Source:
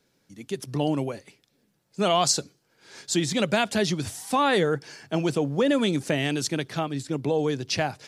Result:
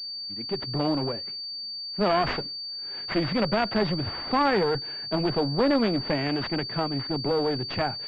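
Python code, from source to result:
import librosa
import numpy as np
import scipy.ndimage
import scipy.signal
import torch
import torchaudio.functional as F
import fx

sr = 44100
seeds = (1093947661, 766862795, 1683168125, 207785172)

y = fx.clip_asym(x, sr, top_db=-28.0, bottom_db=-13.0)
y = fx.pwm(y, sr, carrier_hz=4600.0)
y = y * librosa.db_to_amplitude(2.0)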